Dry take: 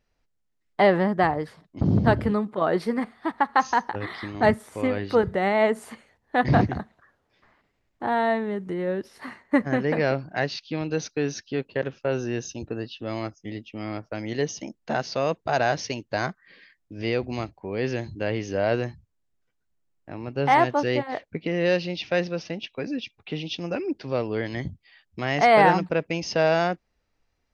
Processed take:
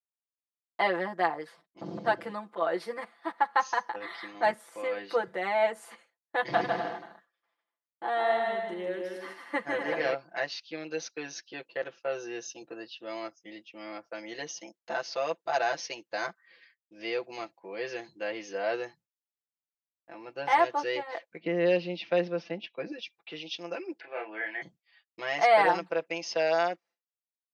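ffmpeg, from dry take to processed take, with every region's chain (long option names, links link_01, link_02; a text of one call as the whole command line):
ffmpeg -i in.wav -filter_complex "[0:a]asettb=1/sr,asplit=3[link_01][link_02][link_03];[link_01]atrim=end=6.394[link_04];[link_02]atrim=start=6.39:end=10.14,asetpts=PTS-STARTPTS,afade=type=in:duration=0.004:curve=qsin,afade=type=out:start_time=3.746:duration=0.004:curve=qsin,equalizer=frequency=3200:width=8:gain=8,aecho=1:1:150|247.5|310.9|352.1|378.8:0.631|0.398|0.251|0.158|0.1,atrim=end_sample=165375[link_05];[link_03]atrim=start=10.136[link_06];[link_04][link_05]acrossfade=duration=0.004:curve1=hsin:curve2=qsin[link_07];[link_07][link_06]acrossfade=duration=0.004:curve1=qsin:curve2=hsin,asettb=1/sr,asplit=3[link_08][link_09][link_10];[link_08]atrim=end=21.404[link_11];[link_09]atrim=start=21.4:end=22.92,asetpts=PTS-STARTPTS,afade=type=in:duration=0.004:curve=qsin,afade=type=out:start_time=1.516:duration=0.004:curve=qsin,lowpass=3700,equalizer=frequency=180:width_type=o:width=1.9:gain=11.5[link_12];[link_10]atrim=start=22.916[link_13];[link_11][link_12]acrossfade=duration=0.004:curve1=hsin:curve2=qsin[link_14];[link_14][link_13]acrossfade=duration=0.004:curve1=qsin:curve2=hsin,asettb=1/sr,asplit=3[link_15][link_16][link_17];[link_15]atrim=end=24.004[link_18];[link_16]atrim=start=24:end=24.62,asetpts=PTS-STARTPTS,afade=type=in:duration=0.004:curve=qsin,afade=type=out:start_time=0.616:duration=0.004:curve=qsin,highpass=420,equalizer=frequency=530:width_type=q:width=4:gain=-8,equalizer=frequency=760:width_type=q:width=4:gain=3,equalizer=frequency=1100:width_type=q:width=4:gain=-9,equalizer=frequency=1600:width_type=q:width=4:gain=8,equalizer=frequency=2300:width_type=q:width=4:gain=6,lowpass=frequency=2500:width=0.5412,lowpass=frequency=2500:width=1.3066,asplit=2[link_19][link_20];[link_20]adelay=28,volume=-3.5dB[link_21];[link_19][link_21]amix=inputs=2:normalize=0,atrim=end_sample=27342[link_22];[link_17]atrim=start=24.616[link_23];[link_18][link_22]acrossfade=duration=0.004:curve1=hsin:curve2=qsin[link_24];[link_24][link_23]acrossfade=duration=0.004:curve1=qsin:curve2=hsin,highpass=480,agate=range=-33dB:threshold=-50dB:ratio=3:detection=peak,aecho=1:1:5.9:0.91,volume=-7dB" out.wav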